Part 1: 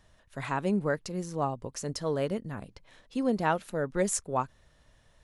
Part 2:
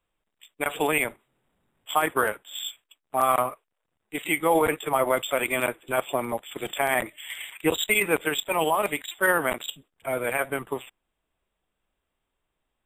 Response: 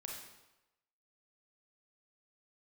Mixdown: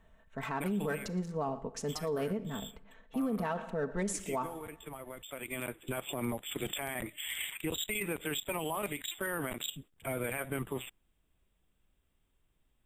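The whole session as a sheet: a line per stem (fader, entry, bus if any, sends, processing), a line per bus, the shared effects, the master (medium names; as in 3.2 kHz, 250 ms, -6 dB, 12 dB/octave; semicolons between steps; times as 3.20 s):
-3.5 dB, 0.00 s, send -9.5 dB, echo send -19.5 dB, local Wiener filter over 9 samples; treble shelf 9.5 kHz -10.5 dB; comb 4.5 ms, depth 66%
+0.5 dB, 0.00 s, no send, no echo send, peaking EQ 730 Hz -6.5 dB 2.4 oct; compression 5:1, threshold -31 dBFS, peak gain reduction 10.5 dB; bass shelf 400 Hz +8.5 dB; auto duck -14 dB, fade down 1.15 s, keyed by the first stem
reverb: on, RT60 1.0 s, pre-delay 29 ms
echo: delay 116 ms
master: treble shelf 6.2 kHz +3.5 dB; peak limiter -25.5 dBFS, peak gain reduction 10.5 dB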